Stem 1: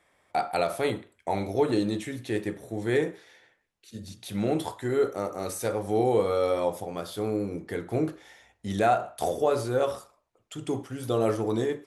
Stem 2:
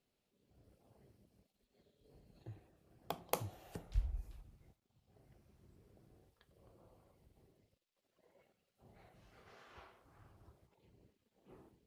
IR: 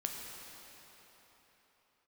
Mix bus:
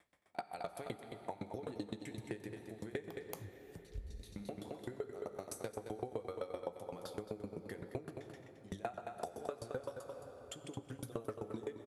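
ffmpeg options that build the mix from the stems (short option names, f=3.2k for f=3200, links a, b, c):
-filter_complex "[0:a]aeval=exprs='val(0)*pow(10,-39*if(lt(mod(7.8*n/s,1),2*abs(7.8)/1000),1-mod(7.8*n/s,1)/(2*abs(7.8)/1000),(mod(7.8*n/s,1)-2*abs(7.8)/1000)/(1-2*abs(7.8)/1000))/20)':c=same,volume=-3dB,asplit=3[a][b][c];[b]volume=-8dB[d];[c]volume=-8.5dB[e];[1:a]bass=f=250:g=6,treble=f=4k:g=4,volume=-9dB,asplit=2[f][g];[g]apad=whole_len=523051[h];[a][h]sidechaincompress=threshold=-55dB:ratio=8:attack=16:release=912[i];[2:a]atrim=start_sample=2205[j];[d][j]afir=irnorm=-1:irlink=0[k];[e]aecho=0:1:219:1[l];[i][f][k][l]amix=inputs=4:normalize=0,highpass=44,acompressor=threshold=-41dB:ratio=3"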